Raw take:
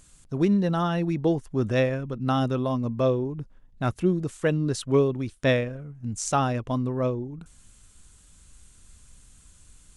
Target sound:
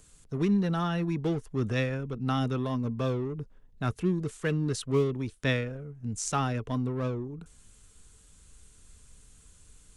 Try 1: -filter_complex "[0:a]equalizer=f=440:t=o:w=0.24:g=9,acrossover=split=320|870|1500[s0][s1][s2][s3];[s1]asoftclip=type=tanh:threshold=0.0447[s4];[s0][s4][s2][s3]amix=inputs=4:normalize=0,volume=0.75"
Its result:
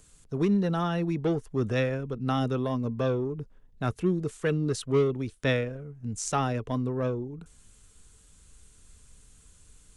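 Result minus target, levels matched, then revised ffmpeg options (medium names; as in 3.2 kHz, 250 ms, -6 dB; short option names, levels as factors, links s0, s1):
saturation: distortion -5 dB
-filter_complex "[0:a]equalizer=f=440:t=o:w=0.24:g=9,acrossover=split=320|870|1500[s0][s1][s2][s3];[s1]asoftclip=type=tanh:threshold=0.0126[s4];[s0][s4][s2][s3]amix=inputs=4:normalize=0,volume=0.75"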